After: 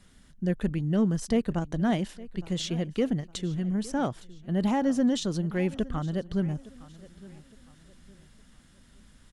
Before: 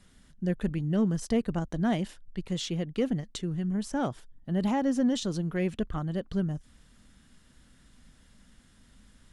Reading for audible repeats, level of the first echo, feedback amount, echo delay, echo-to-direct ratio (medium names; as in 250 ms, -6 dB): 2, -19.5 dB, 35%, 862 ms, -19.0 dB